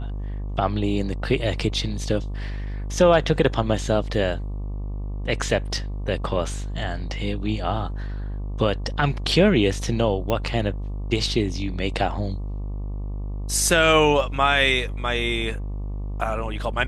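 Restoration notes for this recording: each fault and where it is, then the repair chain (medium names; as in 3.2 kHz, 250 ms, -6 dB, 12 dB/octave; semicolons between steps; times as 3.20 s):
buzz 50 Hz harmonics 24 -29 dBFS
10.30 s: pop -11 dBFS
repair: de-click; de-hum 50 Hz, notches 24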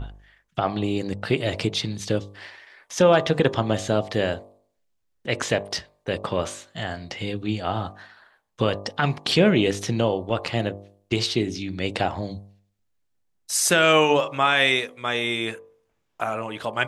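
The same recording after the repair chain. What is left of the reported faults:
nothing left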